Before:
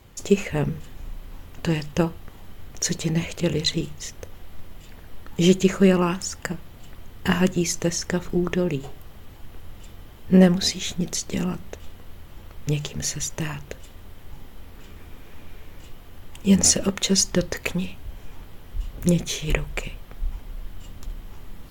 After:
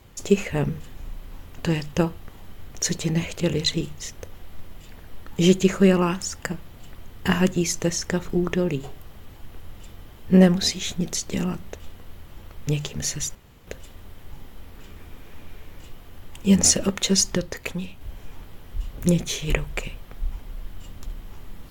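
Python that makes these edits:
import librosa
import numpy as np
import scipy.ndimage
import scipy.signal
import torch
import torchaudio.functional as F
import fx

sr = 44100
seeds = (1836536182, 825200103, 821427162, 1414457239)

y = fx.edit(x, sr, fx.room_tone_fill(start_s=13.35, length_s=0.32),
    fx.clip_gain(start_s=17.37, length_s=0.64, db=-4.0), tone=tone)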